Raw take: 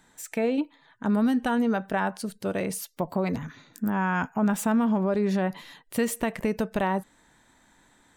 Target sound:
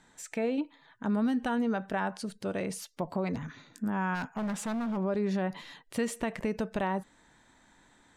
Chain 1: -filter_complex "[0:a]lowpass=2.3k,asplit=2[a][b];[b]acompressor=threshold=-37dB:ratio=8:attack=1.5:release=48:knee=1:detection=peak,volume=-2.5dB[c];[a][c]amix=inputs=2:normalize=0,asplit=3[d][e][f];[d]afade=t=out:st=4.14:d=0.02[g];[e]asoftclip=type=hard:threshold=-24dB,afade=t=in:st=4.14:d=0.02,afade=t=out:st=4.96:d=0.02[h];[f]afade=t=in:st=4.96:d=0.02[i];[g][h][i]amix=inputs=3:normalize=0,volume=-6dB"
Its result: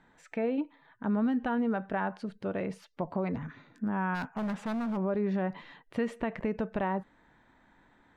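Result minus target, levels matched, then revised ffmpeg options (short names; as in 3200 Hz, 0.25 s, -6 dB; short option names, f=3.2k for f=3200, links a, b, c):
8000 Hz band -17.5 dB
-filter_complex "[0:a]lowpass=8.1k,asplit=2[a][b];[b]acompressor=threshold=-37dB:ratio=8:attack=1.5:release=48:knee=1:detection=peak,volume=-2.5dB[c];[a][c]amix=inputs=2:normalize=0,asplit=3[d][e][f];[d]afade=t=out:st=4.14:d=0.02[g];[e]asoftclip=type=hard:threshold=-24dB,afade=t=in:st=4.14:d=0.02,afade=t=out:st=4.96:d=0.02[h];[f]afade=t=in:st=4.96:d=0.02[i];[g][h][i]amix=inputs=3:normalize=0,volume=-6dB"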